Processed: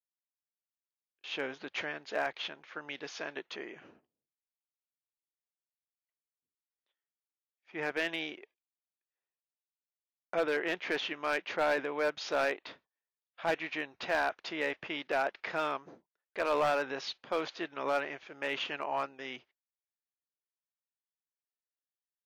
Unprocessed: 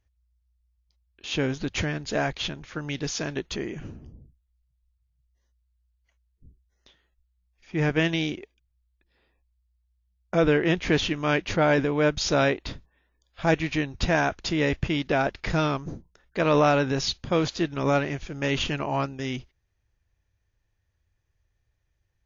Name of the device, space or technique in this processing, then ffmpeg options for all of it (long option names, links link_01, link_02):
walkie-talkie: -af "highpass=560,lowpass=3000,asoftclip=type=hard:threshold=-19dB,agate=range=-22dB:threshold=-58dB:ratio=16:detection=peak,volume=-4dB"